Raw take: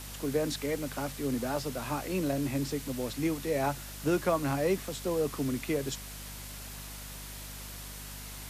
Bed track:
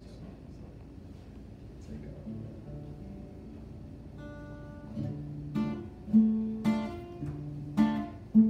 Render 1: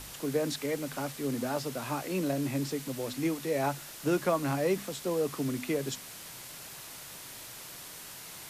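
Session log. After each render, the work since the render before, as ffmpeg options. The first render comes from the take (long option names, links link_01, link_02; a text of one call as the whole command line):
ffmpeg -i in.wav -af "bandreject=frequency=50:width_type=h:width=4,bandreject=frequency=100:width_type=h:width=4,bandreject=frequency=150:width_type=h:width=4,bandreject=frequency=200:width_type=h:width=4,bandreject=frequency=250:width_type=h:width=4" out.wav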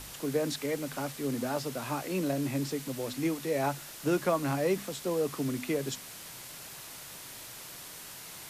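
ffmpeg -i in.wav -af anull out.wav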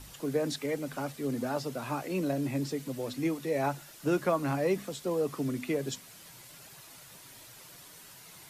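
ffmpeg -i in.wav -af "afftdn=noise_reduction=8:noise_floor=-46" out.wav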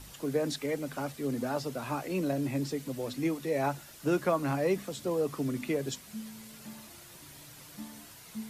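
ffmpeg -i in.wav -i bed.wav -filter_complex "[1:a]volume=-19dB[link_01];[0:a][link_01]amix=inputs=2:normalize=0" out.wav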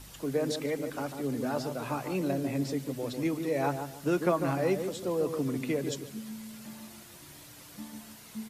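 ffmpeg -i in.wav -filter_complex "[0:a]asplit=2[link_01][link_02];[link_02]adelay=146,lowpass=frequency=1000:poles=1,volume=-6dB,asplit=2[link_03][link_04];[link_04]adelay=146,lowpass=frequency=1000:poles=1,volume=0.33,asplit=2[link_05][link_06];[link_06]adelay=146,lowpass=frequency=1000:poles=1,volume=0.33,asplit=2[link_07][link_08];[link_08]adelay=146,lowpass=frequency=1000:poles=1,volume=0.33[link_09];[link_01][link_03][link_05][link_07][link_09]amix=inputs=5:normalize=0" out.wav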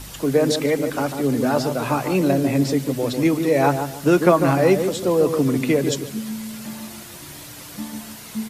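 ffmpeg -i in.wav -af "volume=12dB" out.wav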